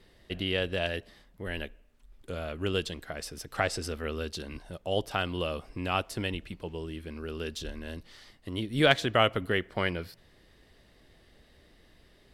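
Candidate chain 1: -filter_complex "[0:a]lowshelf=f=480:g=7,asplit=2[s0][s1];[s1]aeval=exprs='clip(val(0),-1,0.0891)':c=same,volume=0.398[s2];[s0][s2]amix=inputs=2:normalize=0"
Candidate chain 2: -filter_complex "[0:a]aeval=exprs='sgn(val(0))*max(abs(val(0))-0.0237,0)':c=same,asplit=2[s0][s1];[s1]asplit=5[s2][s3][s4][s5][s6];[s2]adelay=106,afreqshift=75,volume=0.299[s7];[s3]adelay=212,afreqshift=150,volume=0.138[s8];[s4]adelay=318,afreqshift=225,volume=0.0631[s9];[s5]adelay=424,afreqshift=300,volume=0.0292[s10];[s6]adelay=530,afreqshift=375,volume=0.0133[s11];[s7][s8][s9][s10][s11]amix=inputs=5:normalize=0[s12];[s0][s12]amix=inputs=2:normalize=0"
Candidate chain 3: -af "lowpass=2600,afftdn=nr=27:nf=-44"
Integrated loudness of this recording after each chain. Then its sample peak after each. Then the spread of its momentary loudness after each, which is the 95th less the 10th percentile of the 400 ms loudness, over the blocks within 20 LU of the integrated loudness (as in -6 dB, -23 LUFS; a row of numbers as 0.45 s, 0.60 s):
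-26.0 LUFS, -32.5 LUFS, -32.5 LUFS; -3.5 dBFS, -6.5 dBFS, -7.5 dBFS; 14 LU, 23 LU, 16 LU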